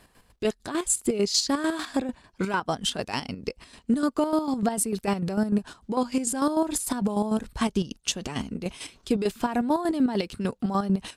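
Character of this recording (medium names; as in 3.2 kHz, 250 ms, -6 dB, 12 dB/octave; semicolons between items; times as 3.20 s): chopped level 6.7 Hz, depth 60%, duty 40%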